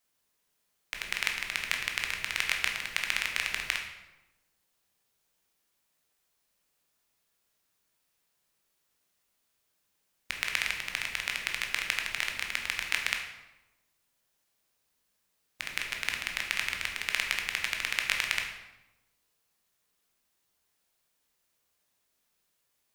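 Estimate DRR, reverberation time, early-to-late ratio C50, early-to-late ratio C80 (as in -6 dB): 1.5 dB, 1.0 s, 5.5 dB, 8.0 dB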